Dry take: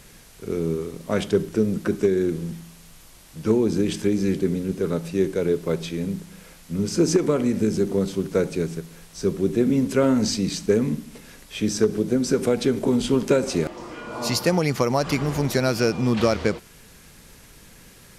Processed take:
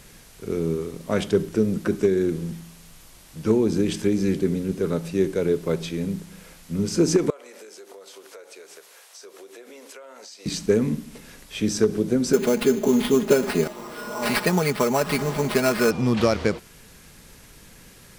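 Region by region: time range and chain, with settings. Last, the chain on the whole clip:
0:07.30–0:10.46: high-pass filter 530 Hz 24 dB per octave + downward compressor 10 to 1, threshold −40 dBFS
0:12.33–0:15.91: low-shelf EQ 100 Hz −10.5 dB + sample-rate reduction 6,700 Hz + comb filter 4.8 ms, depth 68%
whole clip: no processing

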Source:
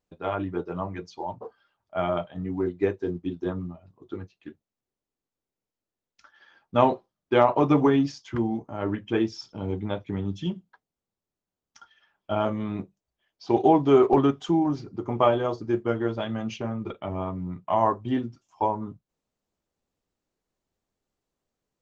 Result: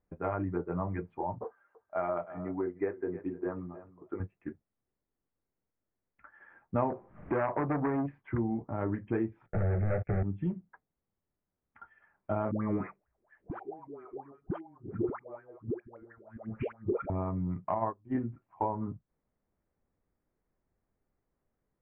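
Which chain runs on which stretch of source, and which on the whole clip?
0:01.44–0:04.20: bass and treble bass −15 dB, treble −13 dB + single-tap delay 306 ms −19 dB
0:06.90–0:08.09: upward compression, threshold −20 dBFS + saturating transformer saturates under 1,400 Hz
0:09.46–0:10.23: high-shelf EQ 2,100 Hz −6.5 dB + leveller curve on the samples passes 5 + phaser with its sweep stopped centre 1,000 Hz, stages 6
0:12.51–0:17.10: gate with flip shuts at −20 dBFS, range −36 dB + all-pass dispersion highs, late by 110 ms, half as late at 660 Hz + auto-filter bell 4.3 Hz 360–1,800 Hz +18 dB
0:17.74–0:18.15: mains-hum notches 60/120/180/240/300 Hz + expander for the loud parts 2.5 to 1, over −34 dBFS
whole clip: Butterworth low-pass 2,200 Hz 48 dB per octave; low-shelf EQ 160 Hz +7 dB; downward compressor 2.5 to 1, threshold −31 dBFS

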